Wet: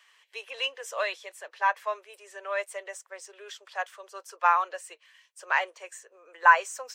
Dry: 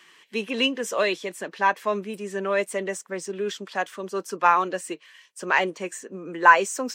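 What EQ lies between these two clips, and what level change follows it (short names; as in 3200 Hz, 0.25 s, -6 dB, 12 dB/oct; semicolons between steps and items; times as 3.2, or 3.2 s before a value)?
steep high-pass 520 Hz 36 dB/oct; dynamic EQ 1300 Hz, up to +5 dB, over -29 dBFS, Q 0.82; -7.5 dB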